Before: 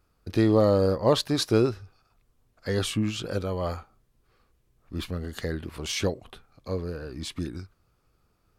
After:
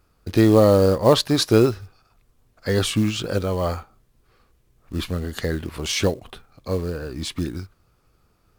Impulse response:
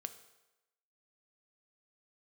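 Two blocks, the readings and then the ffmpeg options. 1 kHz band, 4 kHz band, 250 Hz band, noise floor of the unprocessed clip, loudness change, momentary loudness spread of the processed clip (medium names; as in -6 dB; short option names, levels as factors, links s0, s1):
+6.0 dB, +6.0 dB, +6.0 dB, -69 dBFS, +6.0 dB, 17 LU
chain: -af "acrusher=bits=6:mode=log:mix=0:aa=0.000001,volume=2"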